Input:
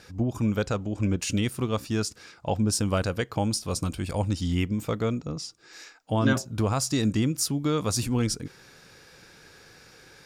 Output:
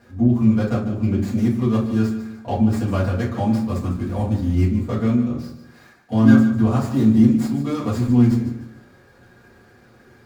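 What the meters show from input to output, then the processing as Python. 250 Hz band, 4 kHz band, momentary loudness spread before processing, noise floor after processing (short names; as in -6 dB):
+11.0 dB, n/a, 9 LU, -51 dBFS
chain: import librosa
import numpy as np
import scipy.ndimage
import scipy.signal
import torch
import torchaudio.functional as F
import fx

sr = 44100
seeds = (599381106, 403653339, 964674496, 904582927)

p1 = scipy.signal.medfilt(x, 15)
p2 = p1 + fx.echo_feedback(p1, sr, ms=149, feedback_pct=35, wet_db=-11.5, dry=0)
p3 = fx.rev_fdn(p2, sr, rt60_s=0.42, lf_ratio=1.45, hf_ratio=0.7, size_ms=25.0, drr_db=-7.5)
y = p3 * librosa.db_to_amplitude(-5.0)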